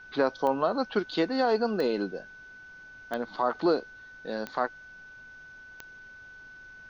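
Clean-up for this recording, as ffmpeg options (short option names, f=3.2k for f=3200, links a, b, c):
-af "adeclick=t=4,bandreject=f=1.5k:w=30,agate=range=-21dB:threshold=-41dB"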